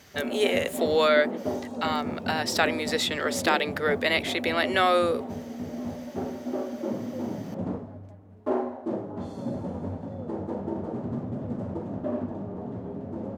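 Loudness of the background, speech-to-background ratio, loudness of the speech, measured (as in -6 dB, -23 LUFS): -33.5 LUFS, 8.0 dB, -25.5 LUFS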